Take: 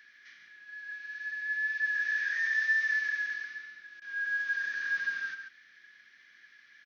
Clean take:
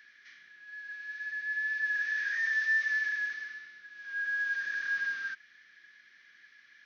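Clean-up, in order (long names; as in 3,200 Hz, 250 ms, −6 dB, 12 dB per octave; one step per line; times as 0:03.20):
repair the gap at 0:04.00, 16 ms
echo removal 140 ms −8 dB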